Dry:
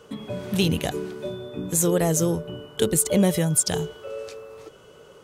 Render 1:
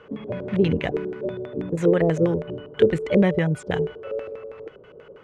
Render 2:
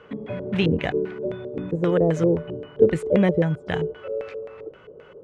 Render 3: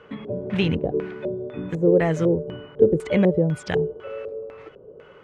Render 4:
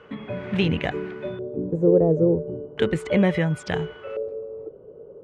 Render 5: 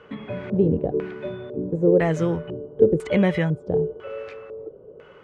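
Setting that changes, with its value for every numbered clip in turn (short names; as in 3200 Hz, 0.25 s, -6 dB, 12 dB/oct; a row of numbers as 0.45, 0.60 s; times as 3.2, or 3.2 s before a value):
LFO low-pass, rate: 6.2, 3.8, 2, 0.36, 1 Hz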